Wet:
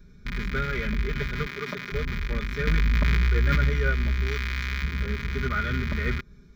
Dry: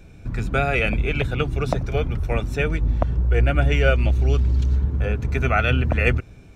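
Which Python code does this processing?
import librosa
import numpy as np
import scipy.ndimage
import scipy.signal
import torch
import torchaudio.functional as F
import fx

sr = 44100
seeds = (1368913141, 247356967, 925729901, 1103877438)

y = fx.rattle_buzz(x, sr, strikes_db=-29.0, level_db=-9.0)
y = fx.highpass(y, sr, hz=230.0, slope=12, at=(1.46, 1.92))
y = fx.tilt_shelf(y, sr, db=-5.5, hz=650.0, at=(4.25, 4.82), fade=0.02)
y = y + 0.71 * np.pad(y, (int(4.9 * sr / 1000.0), 0))[:len(y)]
y = fx.dynamic_eq(y, sr, hz=4800.0, q=0.76, threshold_db=-31.0, ratio=4.0, max_db=-4)
y = fx.fixed_phaser(y, sr, hz=2700.0, stages=6)
y = fx.env_flatten(y, sr, amount_pct=100, at=(2.67, 3.7))
y = F.gain(torch.from_numpy(y), -6.0).numpy()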